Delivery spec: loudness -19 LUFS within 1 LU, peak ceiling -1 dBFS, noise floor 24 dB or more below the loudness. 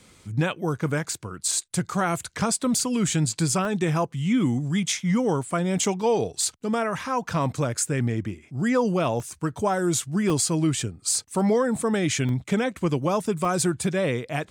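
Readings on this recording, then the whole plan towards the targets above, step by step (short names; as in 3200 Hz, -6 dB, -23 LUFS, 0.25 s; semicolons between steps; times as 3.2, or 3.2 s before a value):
dropouts 6; longest dropout 1.1 ms; loudness -25.0 LUFS; peak -11.5 dBFS; loudness target -19.0 LUFS
-> interpolate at 1.74/3.65/9.2/10.3/12.29/13.45, 1.1 ms; gain +6 dB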